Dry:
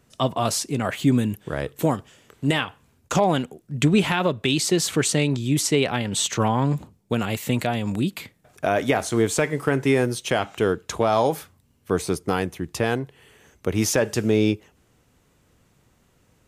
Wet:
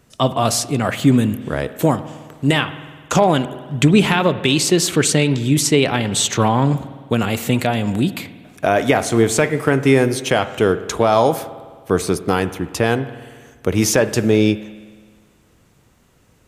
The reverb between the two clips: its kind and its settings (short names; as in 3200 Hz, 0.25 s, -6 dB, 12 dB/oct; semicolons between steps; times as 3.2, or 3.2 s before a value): spring tank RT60 1.6 s, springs 52 ms, chirp 60 ms, DRR 13 dB; gain +5.5 dB